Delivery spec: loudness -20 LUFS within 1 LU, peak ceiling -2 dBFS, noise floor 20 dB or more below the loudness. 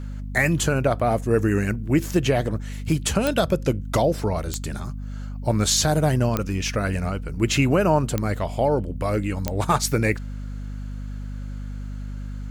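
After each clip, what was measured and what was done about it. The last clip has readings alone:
clicks found 5; hum 50 Hz; highest harmonic 250 Hz; hum level -29 dBFS; loudness -23.0 LUFS; peak level -7.0 dBFS; loudness target -20.0 LUFS
-> de-click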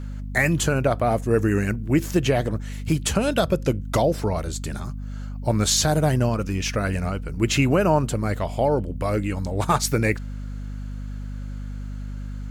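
clicks found 0; hum 50 Hz; highest harmonic 250 Hz; hum level -29 dBFS
-> de-hum 50 Hz, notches 5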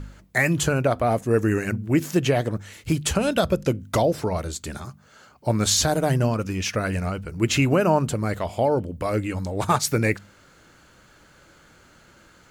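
hum not found; loudness -23.5 LUFS; peak level -8.0 dBFS; loudness target -20.0 LUFS
-> trim +3.5 dB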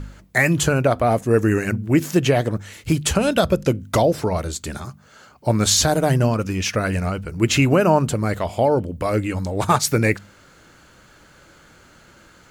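loudness -20.0 LUFS; peak level -4.5 dBFS; noise floor -51 dBFS

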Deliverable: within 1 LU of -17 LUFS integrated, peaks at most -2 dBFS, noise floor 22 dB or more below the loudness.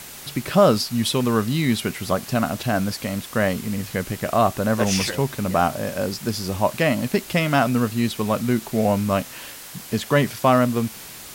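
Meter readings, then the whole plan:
noise floor -39 dBFS; noise floor target -44 dBFS; loudness -22.0 LUFS; peak level -4.5 dBFS; loudness target -17.0 LUFS
-> noise print and reduce 6 dB; trim +5 dB; peak limiter -2 dBFS

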